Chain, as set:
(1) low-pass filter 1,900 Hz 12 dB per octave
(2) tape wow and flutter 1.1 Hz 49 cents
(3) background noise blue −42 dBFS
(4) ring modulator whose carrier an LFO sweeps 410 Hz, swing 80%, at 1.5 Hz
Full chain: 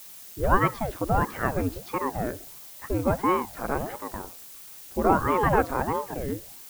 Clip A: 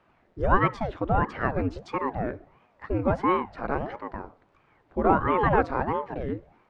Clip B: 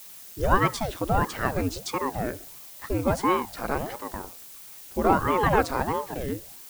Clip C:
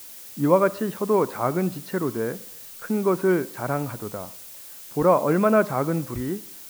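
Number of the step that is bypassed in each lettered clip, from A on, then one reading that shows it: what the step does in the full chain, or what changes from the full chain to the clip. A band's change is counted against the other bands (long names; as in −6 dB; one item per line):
3, 4 kHz band −3.5 dB
1, 4 kHz band +6.5 dB
4, 500 Hz band +4.5 dB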